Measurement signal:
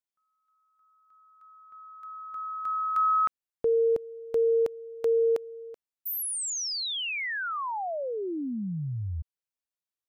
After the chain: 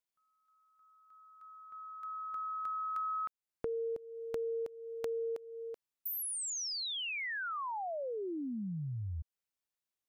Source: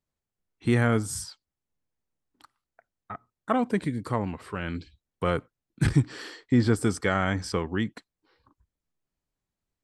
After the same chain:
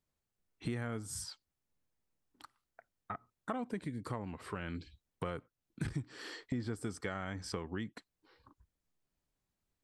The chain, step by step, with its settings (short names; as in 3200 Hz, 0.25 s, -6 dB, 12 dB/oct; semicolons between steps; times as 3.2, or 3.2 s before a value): compressor 4:1, threshold -38 dBFS